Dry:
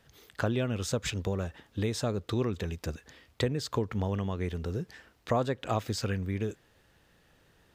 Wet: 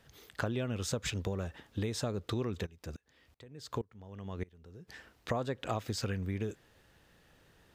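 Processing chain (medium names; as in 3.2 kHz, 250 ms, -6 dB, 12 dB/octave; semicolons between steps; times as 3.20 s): compression 2.5:1, threshold -32 dBFS, peak gain reduction 7 dB; 2.65–4.87 s: sawtooth tremolo in dB swelling 3.4 Hz -> 1.1 Hz, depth 26 dB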